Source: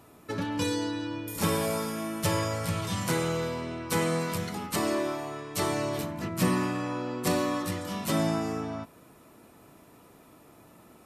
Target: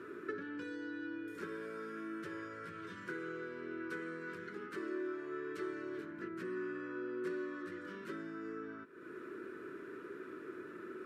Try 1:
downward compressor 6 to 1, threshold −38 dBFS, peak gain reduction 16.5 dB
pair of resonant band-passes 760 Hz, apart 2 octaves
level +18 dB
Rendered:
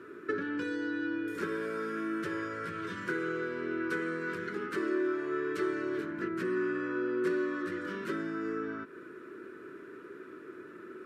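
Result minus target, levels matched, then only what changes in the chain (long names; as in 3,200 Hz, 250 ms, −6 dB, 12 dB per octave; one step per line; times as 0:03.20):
downward compressor: peak gain reduction −9 dB
change: downward compressor 6 to 1, threshold −49 dBFS, peak gain reduction 26 dB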